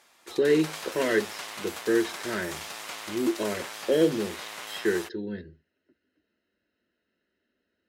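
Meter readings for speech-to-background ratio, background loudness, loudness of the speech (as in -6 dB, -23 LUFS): 9.0 dB, -37.5 LUFS, -28.5 LUFS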